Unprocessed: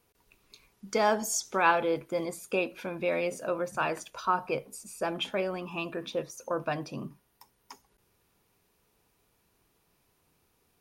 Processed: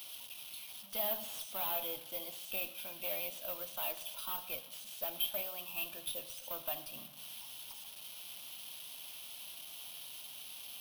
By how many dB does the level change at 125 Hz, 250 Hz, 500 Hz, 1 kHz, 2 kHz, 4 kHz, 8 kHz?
-19.5, -20.0, -15.0, -16.5, -13.5, -0.5, -6.5 dB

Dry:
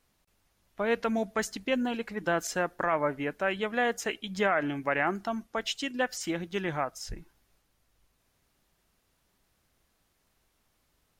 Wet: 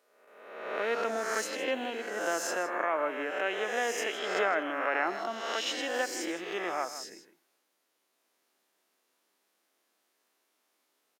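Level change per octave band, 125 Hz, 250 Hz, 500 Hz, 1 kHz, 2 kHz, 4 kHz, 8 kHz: under -15 dB, -7.5 dB, -1.0 dB, -0.5 dB, -0.5 dB, +1.0 dB, +1.5 dB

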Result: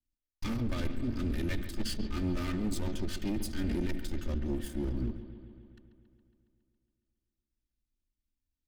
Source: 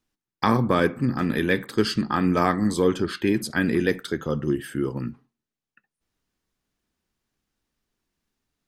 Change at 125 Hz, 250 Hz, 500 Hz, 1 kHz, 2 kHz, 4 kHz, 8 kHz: -8.0, -11.0, -16.5, -21.0, -17.0, -10.0, -6.5 dB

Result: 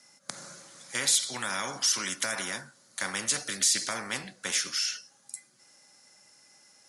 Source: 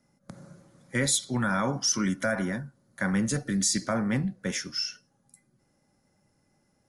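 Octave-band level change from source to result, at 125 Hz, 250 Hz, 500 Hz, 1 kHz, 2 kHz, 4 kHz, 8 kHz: -17.5, -16.0, -8.5, -3.0, -0.5, +3.5, +2.5 dB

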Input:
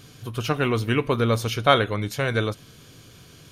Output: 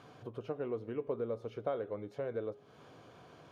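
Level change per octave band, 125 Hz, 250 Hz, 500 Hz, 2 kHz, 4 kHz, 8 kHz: -23.0 dB, -17.0 dB, -12.0 dB, -27.5 dB, under -30 dB, under -30 dB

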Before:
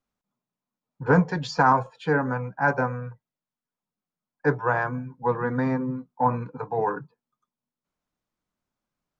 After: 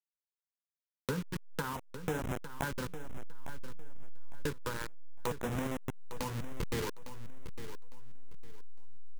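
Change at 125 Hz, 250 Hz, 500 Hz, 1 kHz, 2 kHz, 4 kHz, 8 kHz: -12.0 dB, -13.0 dB, -14.0 dB, -18.0 dB, -15.0 dB, -3.5 dB, n/a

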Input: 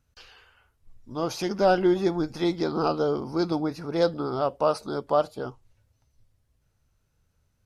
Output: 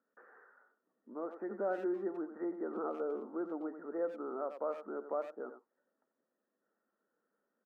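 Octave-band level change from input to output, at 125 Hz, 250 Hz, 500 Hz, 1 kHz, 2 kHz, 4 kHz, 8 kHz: under -25 dB, -13.5 dB, -12.5 dB, -15.5 dB, -15.0 dB, under -35 dB, n/a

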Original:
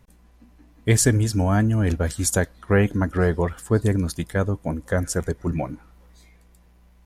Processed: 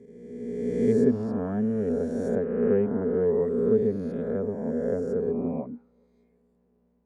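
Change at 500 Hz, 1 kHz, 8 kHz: +1.5 dB, -11.5 dB, under -30 dB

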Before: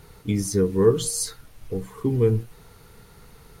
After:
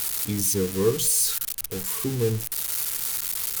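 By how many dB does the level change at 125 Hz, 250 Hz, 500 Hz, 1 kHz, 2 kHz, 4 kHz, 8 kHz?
-4.5, -4.5, -4.5, -1.0, +6.0, +6.0, +7.5 dB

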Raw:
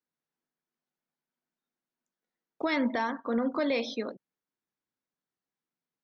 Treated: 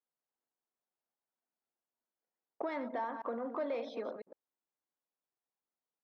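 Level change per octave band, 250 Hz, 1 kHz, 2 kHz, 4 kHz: -13.0, -5.5, -13.0, -17.5 dB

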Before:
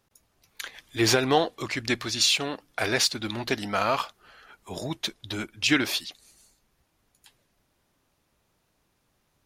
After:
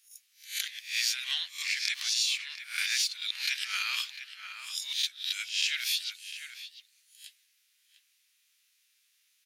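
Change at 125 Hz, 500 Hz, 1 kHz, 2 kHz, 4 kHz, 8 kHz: under -40 dB, under -40 dB, -19.5 dB, -3.5 dB, -1.0 dB, -2.5 dB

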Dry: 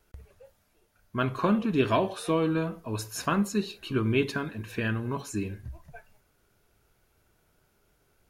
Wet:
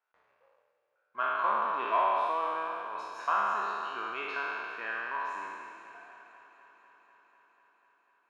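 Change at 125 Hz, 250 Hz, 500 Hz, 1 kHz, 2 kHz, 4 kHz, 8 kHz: under -35 dB, -24.5 dB, -8.5 dB, +5.5 dB, +1.0 dB, -8.0 dB, under -15 dB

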